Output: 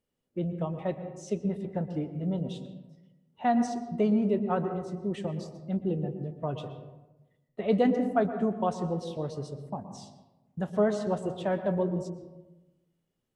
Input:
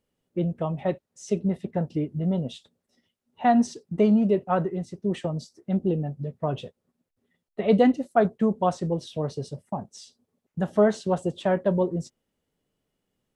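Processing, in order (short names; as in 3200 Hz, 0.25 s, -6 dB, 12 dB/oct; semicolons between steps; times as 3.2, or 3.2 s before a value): on a send: high shelf 3000 Hz -11.5 dB + reverb RT60 1.1 s, pre-delay 0.111 s, DRR 9 dB; on the sum: gain -5.5 dB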